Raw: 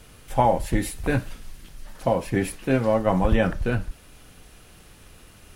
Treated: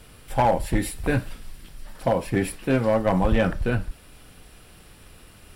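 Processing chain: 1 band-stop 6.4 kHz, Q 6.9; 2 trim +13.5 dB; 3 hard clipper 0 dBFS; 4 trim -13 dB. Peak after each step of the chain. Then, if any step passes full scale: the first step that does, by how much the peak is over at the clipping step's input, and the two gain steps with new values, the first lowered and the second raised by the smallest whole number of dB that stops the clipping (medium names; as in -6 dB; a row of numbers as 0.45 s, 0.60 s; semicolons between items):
-7.5 dBFS, +6.0 dBFS, 0.0 dBFS, -13.0 dBFS; step 2, 6.0 dB; step 2 +7.5 dB, step 4 -7 dB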